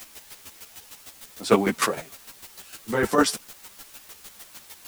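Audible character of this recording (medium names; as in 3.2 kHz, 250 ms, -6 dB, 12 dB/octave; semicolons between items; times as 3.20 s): a quantiser's noise floor 8-bit, dither triangular; chopped level 6.6 Hz, depth 65%, duty 20%; a shimmering, thickened sound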